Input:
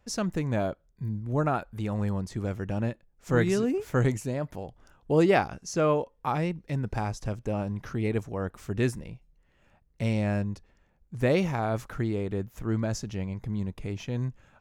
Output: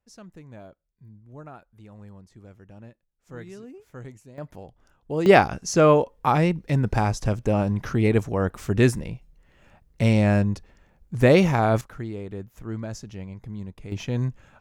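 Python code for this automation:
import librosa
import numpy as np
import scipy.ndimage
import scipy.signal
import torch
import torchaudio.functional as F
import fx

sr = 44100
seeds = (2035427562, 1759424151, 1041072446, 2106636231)

y = fx.gain(x, sr, db=fx.steps((0.0, -16.0), (4.38, -4.0), (5.26, 8.0), (11.81, -4.0), (13.92, 5.0)))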